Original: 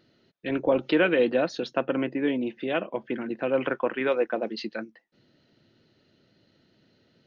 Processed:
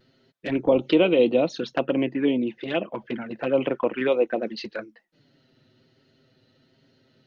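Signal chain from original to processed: touch-sensitive flanger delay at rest 8 ms, full sweep at -22 dBFS; vibrato 1.2 Hz 30 cents; trim +4.5 dB

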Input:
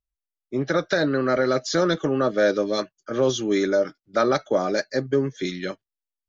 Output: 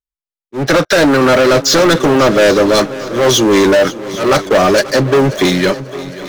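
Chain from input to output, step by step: waveshaping leveller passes 5; slow attack 168 ms; multi-head delay 268 ms, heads second and third, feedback 43%, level -17 dB; trim +2 dB

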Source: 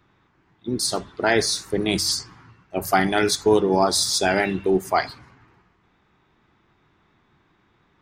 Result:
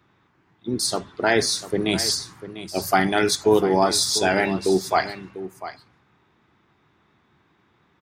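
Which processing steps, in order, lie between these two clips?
high-pass 72 Hz; delay 696 ms -13.5 dB

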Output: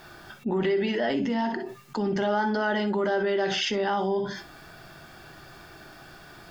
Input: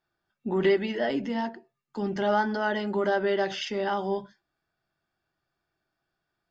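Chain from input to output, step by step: reverberation, pre-delay 3 ms, DRR 10.5 dB; level flattener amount 70%; trim -6 dB

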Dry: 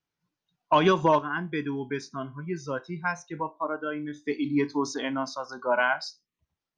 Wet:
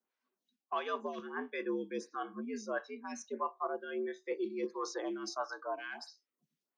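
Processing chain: high-pass 120 Hz; reverse; compression 16:1, threshold -30 dBFS, peak gain reduction 15.5 dB; reverse; frequency shift +75 Hz; lamp-driven phase shifter 1.5 Hz

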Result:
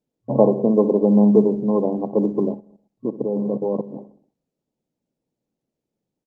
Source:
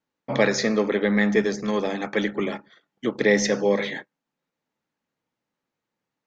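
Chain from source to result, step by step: local Wiener filter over 41 samples; on a send: feedback delay 63 ms, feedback 56%, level -16 dB; 2.54–3.94 s: on the sum: level held to a coarse grid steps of 14 dB; FFT band-pass 110–1100 Hz; trim +6.5 dB; Opus 24 kbps 48 kHz

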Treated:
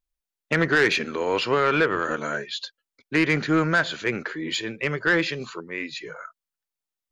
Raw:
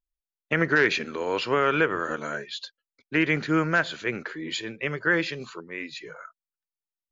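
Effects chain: saturation -15.5 dBFS, distortion -15 dB; trim +4 dB

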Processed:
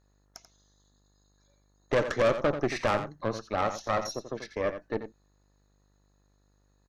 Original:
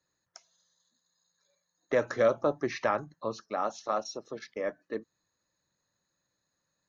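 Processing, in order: valve stage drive 27 dB, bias 0.8; echo from a far wall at 15 m, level -10 dB; mains buzz 50 Hz, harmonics 29, -75 dBFS -6 dB/octave; trim +7.5 dB

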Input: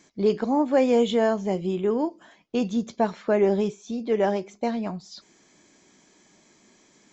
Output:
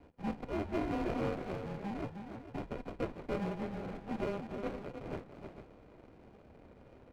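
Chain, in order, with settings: high-pass 180 Hz 24 dB/octave; differentiator; hum notches 50/100/150/200/250/300 Hz; sample-and-hold 31×; saturation -36 dBFS, distortion -16 dB; multi-tap echo 311/449 ms -7.5/-11.5 dB; mistuned SSB -210 Hz 240–2400 Hz; sliding maximum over 17 samples; trim +10 dB

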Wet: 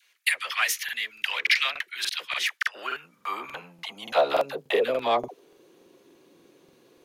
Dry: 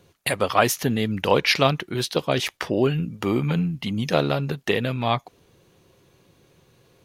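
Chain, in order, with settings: phase dispersion lows, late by 65 ms, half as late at 620 Hz; in parallel at -8 dB: saturation -23 dBFS, distortion -8 dB; on the sum: high-pass sweep 2 kHz -> 290 Hz, 2.16–5.87 s; crackling interface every 0.29 s, samples 2048, repeat, from 0.84 s; trim -4.5 dB

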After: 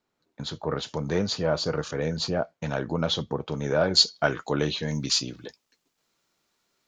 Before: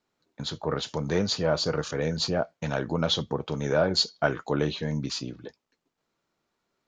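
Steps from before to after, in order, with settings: treble shelf 2.4 kHz -2 dB, from 3.81 s +7 dB, from 4.88 s +12 dB

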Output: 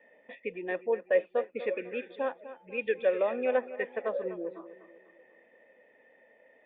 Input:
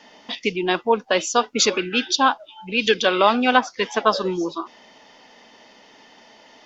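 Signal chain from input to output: cascade formant filter e; bucket-brigade echo 248 ms, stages 4096, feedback 42%, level -14 dB

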